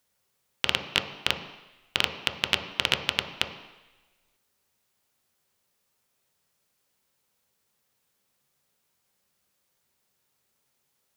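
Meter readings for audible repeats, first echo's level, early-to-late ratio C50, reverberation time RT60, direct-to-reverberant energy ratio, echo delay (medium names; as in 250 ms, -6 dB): no echo, no echo, 8.5 dB, 1.1 s, 4.0 dB, no echo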